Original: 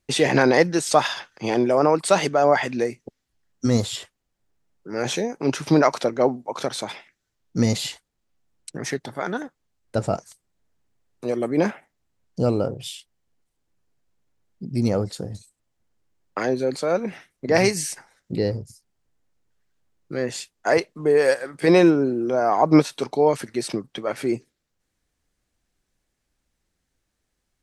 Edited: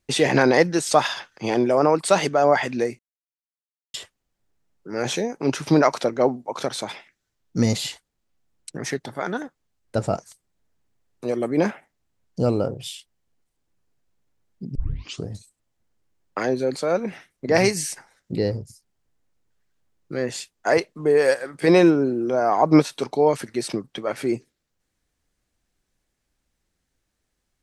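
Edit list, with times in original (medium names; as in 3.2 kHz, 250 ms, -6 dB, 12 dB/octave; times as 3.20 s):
2.99–3.94 s: mute
14.75 s: tape start 0.53 s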